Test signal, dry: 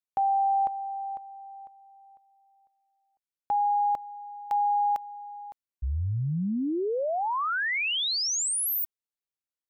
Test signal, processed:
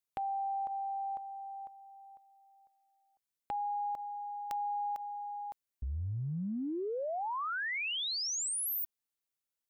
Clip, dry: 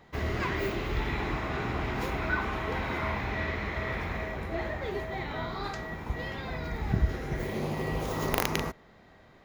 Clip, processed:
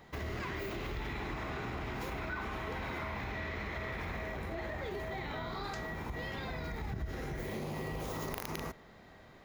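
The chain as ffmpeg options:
-af "highshelf=f=6800:g=5.5,acompressor=threshold=0.0178:ratio=5:attack=1.5:release=92:knee=1:detection=peak"

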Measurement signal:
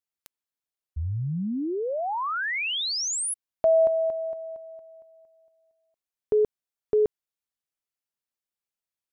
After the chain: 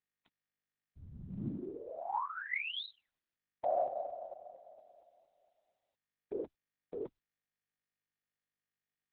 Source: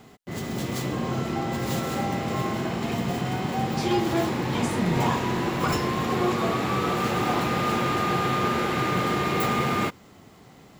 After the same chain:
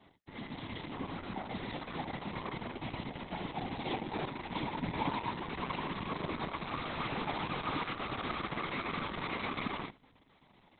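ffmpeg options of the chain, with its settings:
-af "highpass=150,equalizer=f=210:t=q:w=4:g=9,equalizer=f=460:t=q:w=4:g=-4,equalizer=f=910:t=q:w=4:g=10,equalizer=f=2200:t=q:w=4:g=7,equalizer=f=3500:t=q:w=4:g=7,equalizer=f=5200:t=q:w=4:g=5,lowpass=f=5600:w=0.5412,lowpass=f=5600:w=1.3066,afftfilt=real='hypot(re,im)*cos(2*PI*random(0))':imag='hypot(re,im)*sin(2*PI*random(1))':win_size=512:overlap=0.75,volume=0.376" -ar 48000 -c:a libopus -b:a 6k

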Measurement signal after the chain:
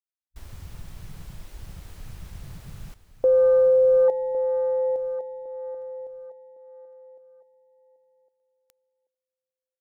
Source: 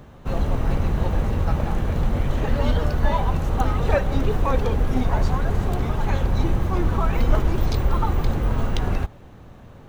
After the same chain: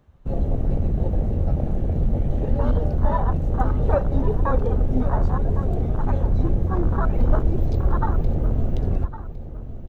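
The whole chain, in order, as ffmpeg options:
-filter_complex "[0:a]afwtdn=0.0631,asplit=2[s0][s1];[s1]aecho=0:1:1108|2216|3324:0.224|0.0582|0.0151[s2];[s0][s2]amix=inputs=2:normalize=0"

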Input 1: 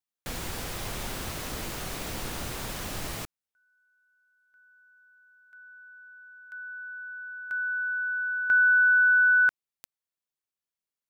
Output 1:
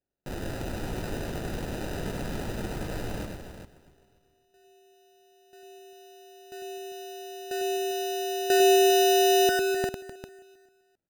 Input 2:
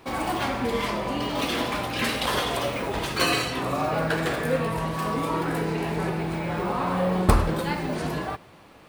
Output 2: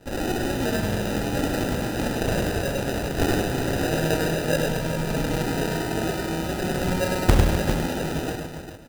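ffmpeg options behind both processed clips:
-filter_complex "[0:a]asplit=2[s0][s1];[s1]aecho=0:1:266|532|798|1064:0.126|0.0567|0.0255|0.0115[s2];[s0][s2]amix=inputs=2:normalize=0,acrusher=samples=40:mix=1:aa=0.000001,asplit=2[s3][s4];[s4]aecho=0:1:101|254|399:0.596|0.251|0.355[s5];[s3][s5]amix=inputs=2:normalize=0"

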